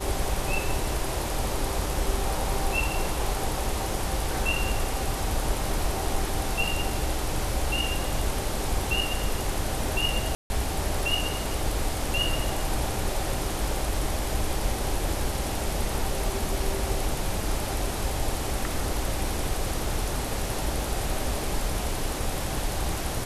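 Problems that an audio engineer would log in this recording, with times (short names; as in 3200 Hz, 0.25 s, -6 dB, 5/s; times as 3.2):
10.35–10.5 gap 0.15 s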